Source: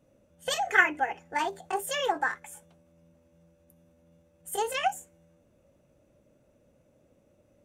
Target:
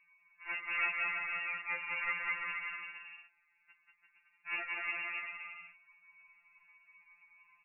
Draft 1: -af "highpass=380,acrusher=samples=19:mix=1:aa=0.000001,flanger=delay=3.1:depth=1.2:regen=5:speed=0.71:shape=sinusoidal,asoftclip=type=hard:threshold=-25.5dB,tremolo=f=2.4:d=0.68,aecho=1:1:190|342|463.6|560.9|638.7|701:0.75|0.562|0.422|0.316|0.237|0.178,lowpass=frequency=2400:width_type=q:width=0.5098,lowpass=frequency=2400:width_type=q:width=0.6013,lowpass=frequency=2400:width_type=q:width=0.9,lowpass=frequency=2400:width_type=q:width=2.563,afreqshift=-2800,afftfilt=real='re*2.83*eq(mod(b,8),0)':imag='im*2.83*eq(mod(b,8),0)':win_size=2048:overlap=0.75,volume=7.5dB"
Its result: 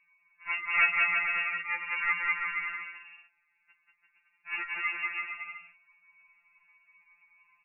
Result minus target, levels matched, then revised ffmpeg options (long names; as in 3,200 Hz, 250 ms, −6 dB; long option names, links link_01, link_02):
hard clipping: distortion −7 dB
-af "highpass=380,acrusher=samples=19:mix=1:aa=0.000001,flanger=delay=3.1:depth=1.2:regen=5:speed=0.71:shape=sinusoidal,asoftclip=type=hard:threshold=-37.5dB,tremolo=f=2.4:d=0.68,aecho=1:1:190|342|463.6|560.9|638.7|701:0.75|0.562|0.422|0.316|0.237|0.178,lowpass=frequency=2400:width_type=q:width=0.5098,lowpass=frequency=2400:width_type=q:width=0.6013,lowpass=frequency=2400:width_type=q:width=0.9,lowpass=frequency=2400:width_type=q:width=2.563,afreqshift=-2800,afftfilt=real='re*2.83*eq(mod(b,8),0)':imag='im*2.83*eq(mod(b,8),0)':win_size=2048:overlap=0.75,volume=7.5dB"